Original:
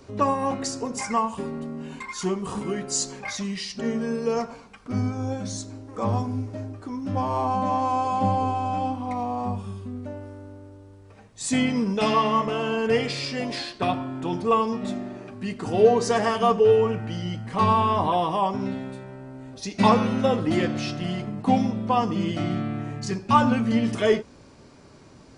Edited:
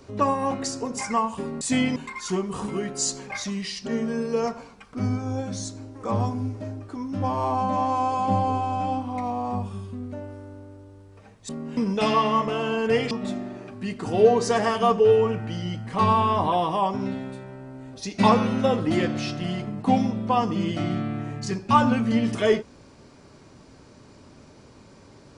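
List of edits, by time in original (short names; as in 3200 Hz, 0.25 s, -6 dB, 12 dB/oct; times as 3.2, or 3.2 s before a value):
1.61–1.89 swap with 11.42–11.77
13.11–14.71 cut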